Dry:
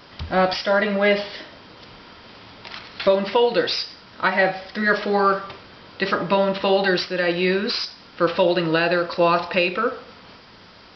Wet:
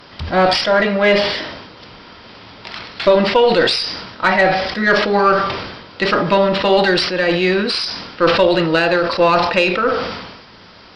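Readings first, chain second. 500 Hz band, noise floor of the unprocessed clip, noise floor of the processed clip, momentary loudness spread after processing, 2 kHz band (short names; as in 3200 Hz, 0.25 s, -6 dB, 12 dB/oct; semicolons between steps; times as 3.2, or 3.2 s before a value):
+5.5 dB, -47 dBFS, -42 dBFS, 11 LU, +5.5 dB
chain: added harmonics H 4 -23 dB, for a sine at -5.5 dBFS; sustainer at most 49 dB/s; gain +4.5 dB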